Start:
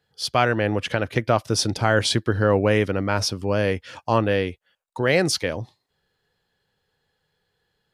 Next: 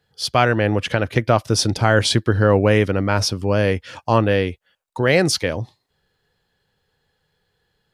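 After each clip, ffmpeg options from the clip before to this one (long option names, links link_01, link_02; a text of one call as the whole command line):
ffmpeg -i in.wav -af "lowshelf=frequency=120:gain=4.5,volume=3dB" out.wav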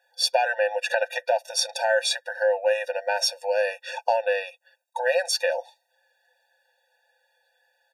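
ffmpeg -i in.wav -af "aecho=1:1:5.8:0.49,acompressor=threshold=-20dB:ratio=6,afftfilt=real='re*eq(mod(floor(b*sr/1024/480),2),1)':imag='im*eq(mod(floor(b*sr/1024/480),2),1)':win_size=1024:overlap=0.75,volume=4.5dB" out.wav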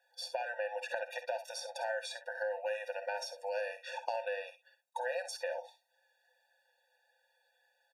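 ffmpeg -i in.wav -filter_complex "[0:a]acrossover=split=580|1300[link_01][link_02][link_03];[link_01]acompressor=threshold=-38dB:ratio=4[link_04];[link_02]acompressor=threshold=-33dB:ratio=4[link_05];[link_03]acompressor=threshold=-38dB:ratio=4[link_06];[link_04][link_05][link_06]amix=inputs=3:normalize=0,aecho=1:1:53|65:0.211|0.224,volume=-6.5dB" out.wav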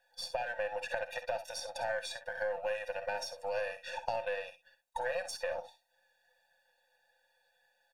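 ffmpeg -i in.wav -af "aeval=exprs='if(lt(val(0),0),0.708*val(0),val(0))':channel_layout=same,volume=2.5dB" out.wav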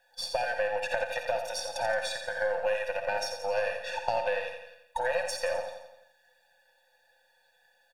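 ffmpeg -i in.wav -af "aecho=1:1:86|172|258|344|430|516:0.398|0.215|0.116|0.0627|0.0339|0.0183,volume=5.5dB" out.wav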